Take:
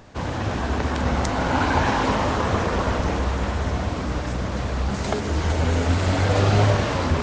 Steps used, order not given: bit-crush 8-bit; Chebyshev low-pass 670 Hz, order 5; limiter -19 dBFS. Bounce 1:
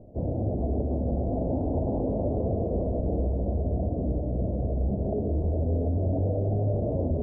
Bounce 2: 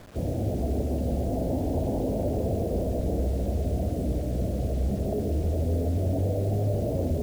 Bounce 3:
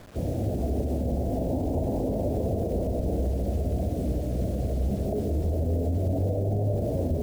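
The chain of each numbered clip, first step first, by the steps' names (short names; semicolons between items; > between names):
bit-crush > Chebyshev low-pass > limiter; Chebyshev low-pass > limiter > bit-crush; Chebyshev low-pass > bit-crush > limiter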